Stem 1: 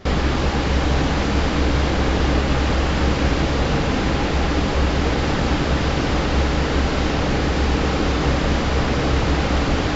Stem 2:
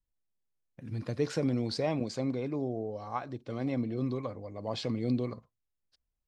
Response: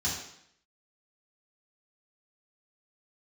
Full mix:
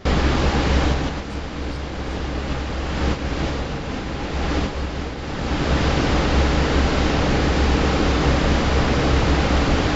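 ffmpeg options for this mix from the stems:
-filter_complex "[0:a]volume=1dB[a];[1:a]highshelf=f=3.7k:t=q:w=1.5:g=7.5,volume=-18dB,asplit=3[b][c][d];[c]volume=-9.5dB[e];[d]apad=whole_len=439060[f];[a][f]sidechaincompress=threshold=-54dB:ratio=4:attack=5.4:release=622[g];[e]aecho=0:1:314|628|942|1256|1570|1884|2198|2512|2826:1|0.59|0.348|0.205|0.121|0.0715|0.0422|0.0249|0.0147[h];[g][b][h]amix=inputs=3:normalize=0"

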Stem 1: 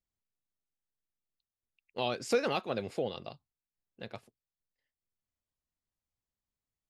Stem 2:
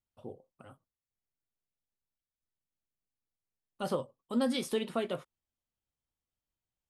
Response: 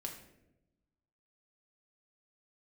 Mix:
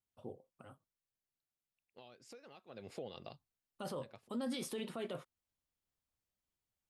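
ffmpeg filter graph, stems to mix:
-filter_complex "[0:a]acompressor=threshold=-39dB:ratio=4,volume=-3dB,afade=t=in:st=2.67:d=0.24:silence=0.223872[a];[1:a]highpass=52,volume=-3dB,asplit=2[b][c];[c]apad=whole_len=304261[d];[a][d]sidechaincompress=threshold=-40dB:ratio=8:attack=16:release=544[e];[e][b]amix=inputs=2:normalize=0,alimiter=level_in=8.5dB:limit=-24dB:level=0:latency=1:release=18,volume=-8.5dB"

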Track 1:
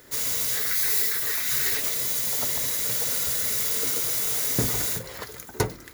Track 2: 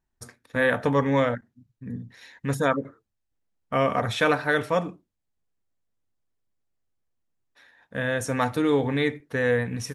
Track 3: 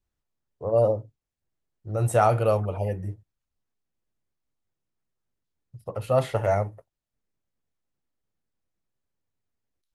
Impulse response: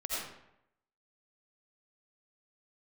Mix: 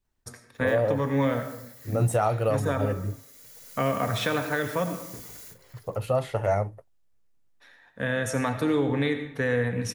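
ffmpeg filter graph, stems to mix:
-filter_complex "[0:a]bandreject=f=3.7k:w=16,adelay=550,volume=-18dB[a];[1:a]acrossover=split=270[b][c];[c]acompressor=threshold=-25dB:ratio=4[d];[b][d]amix=inputs=2:normalize=0,adelay=50,volume=-1dB,asplit=2[e][f];[f]volume=-10.5dB[g];[2:a]volume=1.5dB,asplit=2[h][i];[i]apad=whole_len=285941[j];[a][j]sidechaincompress=threshold=-31dB:ratio=5:attack=45:release=1370[k];[3:a]atrim=start_sample=2205[l];[g][l]afir=irnorm=-1:irlink=0[m];[k][e][h][m]amix=inputs=4:normalize=0,alimiter=limit=-14dB:level=0:latency=1:release=349"

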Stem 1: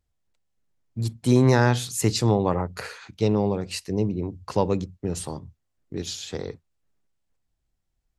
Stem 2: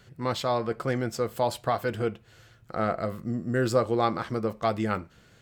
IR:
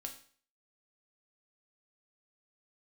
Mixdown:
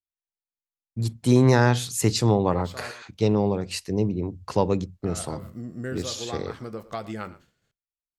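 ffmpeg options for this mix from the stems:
-filter_complex "[0:a]volume=0.5dB,asplit=2[a][b];[1:a]acompressor=threshold=-29dB:ratio=2.5,highshelf=f=4k:g=5,adelay=2300,volume=-3.5dB,asplit=3[c][d][e];[c]atrim=end=2.91,asetpts=PTS-STARTPTS,afade=t=out:st=2.906:d=0.004:c=hsin[f];[d]atrim=start=2.91:end=5.02,asetpts=PTS-STARTPTS,volume=0[g];[e]atrim=start=5.02,asetpts=PTS-STARTPTS,afade=t=in:d=0.004:c=hsin[h];[f][g][h]concat=n=3:v=0:a=1,asplit=3[i][j][k];[j]volume=-11.5dB[l];[k]volume=-17.5dB[m];[b]apad=whole_len=340131[n];[i][n]sidechaincompress=threshold=-28dB:ratio=8:attack=5.4:release=898[o];[2:a]atrim=start_sample=2205[p];[l][p]afir=irnorm=-1:irlink=0[q];[m]aecho=0:1:114:1[r];[a][o][q][r]amix=inputs=4:normalize=0,agate=range=-33dB:threshold=-47dB:ratio=3:detection=peak"

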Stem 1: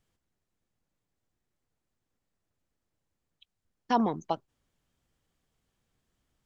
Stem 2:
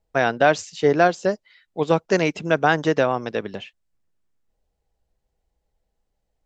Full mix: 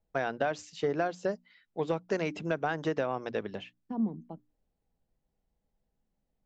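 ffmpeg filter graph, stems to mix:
-filter_complex "[0:a]bandpass=f=200:t=q:w=2.2:csg=0,volume=0dB[a];[1:a]highshelf=f=4.1k:g=-6.5,acompressor=threshold=-19dB:ratio=6,asoftclip=type=tanh:threshold=-9dB,volume=-6dB[b];[a][b]amix=inputs=2:normalize=0,bandreject=f=60:t=h:w=6,bandreject=f=120:t=h:w=6,bandreject=f=180:t=h:w=6,bandreject=f=240:t=h:w=6,bandreject=f=300:t=h:w=6"

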